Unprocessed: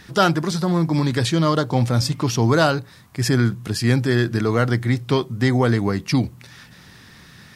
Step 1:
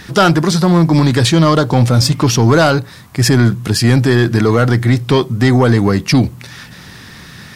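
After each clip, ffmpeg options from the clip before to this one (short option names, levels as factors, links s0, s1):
-filter_complex "[0:a]asplit=2[s0][s1];[s1]alimiter=limit=0.282:level=0:latency=1,volume=0.891[s2];[s0][s2]amix=inputs=2:normalize=0,acontrast=49,volume=0.891"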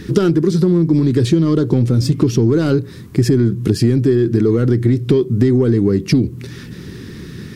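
-af "lowshelf=f=520:t=q:w=3:g=10,acompressor=threshold=0.562:ratio=10,volume=0.562"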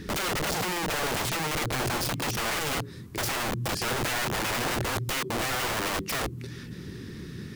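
-af "aeval=exprs='(mod(6.31*val(0)+1,2)-1)/6.31':c=same,volume=0.398"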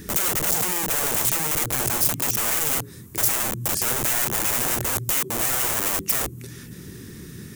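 -af "aexciter=amount=4.1:drive=5.9:freq=6300"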